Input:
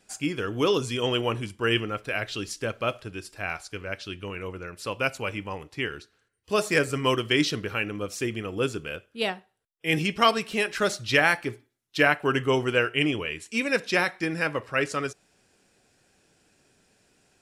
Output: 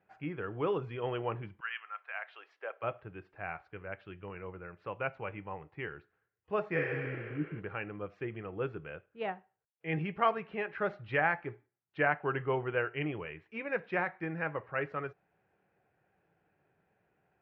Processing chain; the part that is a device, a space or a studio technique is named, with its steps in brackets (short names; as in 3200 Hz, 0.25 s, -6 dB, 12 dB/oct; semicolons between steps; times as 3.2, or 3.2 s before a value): 6.8–7.58 spectral repair 360–8000 Hz both; bass cabinet (speaker cabinet 66–2100 Hz, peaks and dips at 160 Hz +4 dB, 250 Hz -10 dB, 790 Hz +5 dB); 1.59–2.82 HPF 1400 Hz -> 430 Hz 24 dB/oct; gain -8 dB